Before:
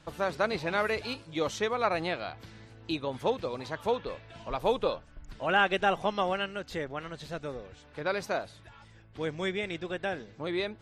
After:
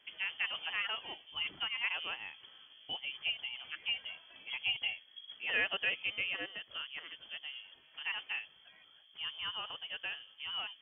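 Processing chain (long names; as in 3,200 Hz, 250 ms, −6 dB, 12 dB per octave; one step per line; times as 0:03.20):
voice inversion scrambler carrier 3,300 Hz
high-pass filter 120 Hz 6 dB per octave
level −8 dB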